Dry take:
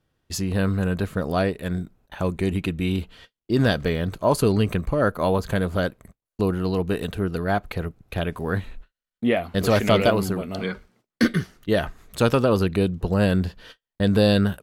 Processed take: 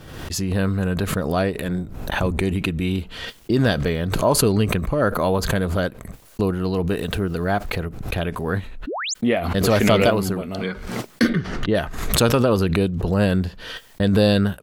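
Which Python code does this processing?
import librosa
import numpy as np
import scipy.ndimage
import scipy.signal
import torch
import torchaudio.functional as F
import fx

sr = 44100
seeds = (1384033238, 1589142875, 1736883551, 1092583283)

y = fx.octave_divider(x, sr, octaves=1, level_db=-3.0, at=(1.65, 2.42))
y = fx.quant_dither(y, sr, seeds[0], bits=10, dither='none', at=(6.88, 7.79))
y = fx.spec_paint(y, sr, seeds[1], shape='rise', start_s=8.87, length_s=0.27, low_hz=240.0, high_hz=7800.0, level_db=-28.0)
y = fx.spacing_loss(y, sr, db_at_10k=21, at=(11.28, 11.74), fade=0.02)
y = fx.pre_swell(y, sr, db_per_s=48.0)
y = y * 10.0 ** (1.0 / 20.0)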